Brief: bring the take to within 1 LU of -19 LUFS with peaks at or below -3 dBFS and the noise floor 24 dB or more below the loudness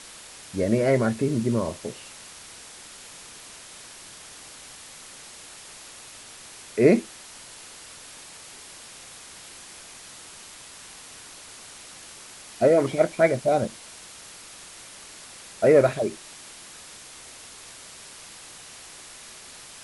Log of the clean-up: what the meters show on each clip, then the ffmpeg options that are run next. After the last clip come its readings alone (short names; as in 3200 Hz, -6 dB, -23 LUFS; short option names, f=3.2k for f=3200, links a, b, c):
noise floor -45 dBFS; noise floor target -47 dBFS; loudness -22.5 LUFS; peak -4.0 dBFS; loudness target -19.0 LUFS
-> -af "afftdn=nr=6:nf=-45"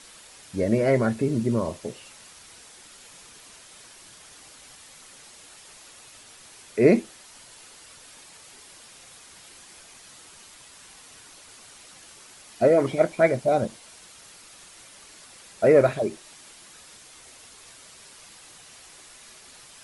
noise floor -49 dBFS; loudness -23.0 LUFS; peak -4.0 dBFS; loudness target -19.0 LUFS
-> -af "volume=4dB,alimiter=limit=-3dB:level=0:latency=1"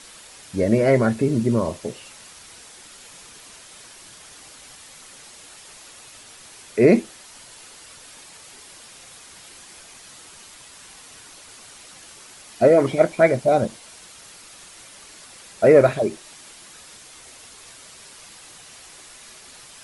loudness -19.0 LUFS; peak -3.0 dBFS; noise floor -45 dBFS